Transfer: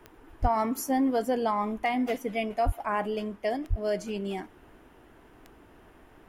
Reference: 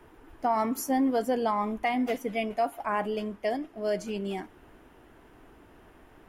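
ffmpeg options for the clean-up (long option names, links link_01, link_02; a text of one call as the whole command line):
ffmpeg -i in.wav -filter_complex "[0:a]adeclick=threshold=4,asplit=3[link_01][link_02][link_03];[link_01]afade=type=out:start_time=0.41:duration=0.02[link_04];[link_02]highpass=frequency=140:width=0.5412,highpass=frequency=140:width=1.3066,afade=type=in:start_time=0.41:duration=0.02,afade=type=out:start_time=0.53:duration=0.02[link_05];[link_03]afade=type=in:start_time=0.53:duration=0.02[link_06];[link_04][link_05][link_06]amix=inputs=3:normalize=0,asplit=3[link_07][link_08][link_09];[link_07]afade=type=out:start_time=2.65:duration=0.02[link_10];[link_08]highpass=frequency=140:width=0.5412,highpass=frequency=140:width=1.3066,afade=type=in:start_time=2.65:duration=0.02,afade=type=out:start_time=2.77:duration=0.02[link_11];[link_09]afade=type=in:start_time=2.77:duration=0.02[link_12];[link_10][link_11][link_12]amix=inputs=3:normalize=0,asplit=3[link_13][link_14][link_15];[link_13]afade=type=out:start_time=3.69:duration=0.02[link_16];[link_14]highpass=frequency=140:width=0.5412,highpass=frequency=140:width=1.3066,afade=type=in:start_time=3.69:duration=0.02,afade=type=out:start_time=3.81:duration=0.02[link_17];[link_15]afade=type=in:start_time=3.81:duration=0.02[link_18];[link_16][link_17][link_18]amix=inputs=3:normalize=0" out.wav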